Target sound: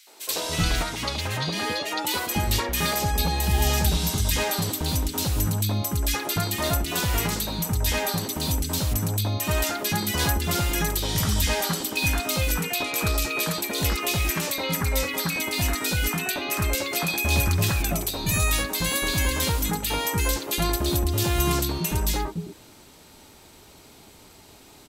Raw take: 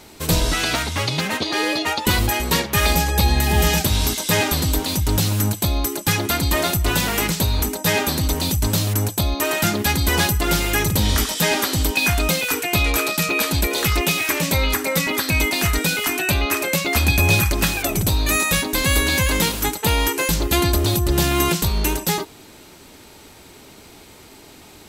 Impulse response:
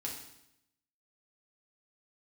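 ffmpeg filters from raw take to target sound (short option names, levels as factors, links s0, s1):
-filter_complex "[0:a]acrossover=split=340|2000[s0][s1][s2];[s1]adelay=70[s3];[s0]adelay=290[s4];[s4][s3][s2]amix=inputs=3:normalize=0,atempo=1,volume=0.596"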